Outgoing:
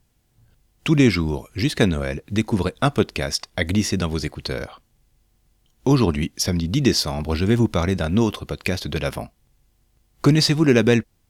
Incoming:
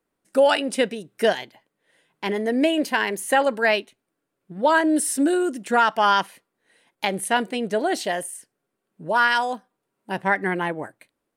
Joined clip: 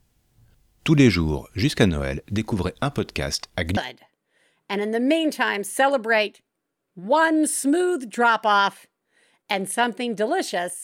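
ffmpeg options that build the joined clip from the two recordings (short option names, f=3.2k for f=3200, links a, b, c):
-filter_complex "[0:a]asettb=1/sr,asplit=3[a][b][c];[a]atrim=end=1.894[d];[b]atrim=start=1.89:end=3.77,asetpts=PTS-STARTPTS,afade=t=in:d=0.004:c=qsin,afade=t=out:st=1.876:d=0.004:c=qsin,acompressor=threshold=-19dB:ratio=3:attack=3.2:release=140:knee=1:detection=peak[e];[c]atrim=start=3.766[f];[d][e]acrossfade=d=0.004:c1=hsin:c2=qsin[g];[g][f]acrossfade=d=0.004:c1=qsin:c2=hsin,apad=whole_dur=10.83,atrim=end=10.83,atrim=end=3.772[h];[1:a]atrim=start=1.298:end=8.36[i];[h][i]acrossfade=d=0.004:c1=hsin:c2=hsin"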